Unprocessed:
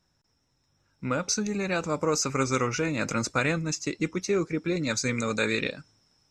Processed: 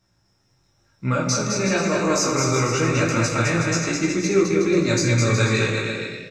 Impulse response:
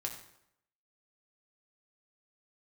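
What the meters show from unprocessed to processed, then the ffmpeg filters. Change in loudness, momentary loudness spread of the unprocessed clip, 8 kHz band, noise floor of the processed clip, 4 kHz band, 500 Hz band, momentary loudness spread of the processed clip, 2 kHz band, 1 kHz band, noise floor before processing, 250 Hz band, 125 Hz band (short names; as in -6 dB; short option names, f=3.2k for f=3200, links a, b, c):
+7.0 dB, 5 LU, +6.5 dB, -65 dBFS, +7.0 dB, +7.5 dB, 5 LU, +6.5 dB, +6.5 dB, -72 dBFS, +7.5 dB, +11.5 dB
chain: -filter_complex "[0:a]flanger=delay=15.5:depth=7.4:speed=0.98,alimiter=limit=-19.5dB:level=0:latency=1:release=152,aecho=1:1:210|367.5|485.6|574.2|640.7:0.631|0.398|0.251|0.158|0.1[a];[1:a]atrim=start_sample=2205[b];[a][b]afir=irnorm=-1:irlink=0,volume=8.5dB"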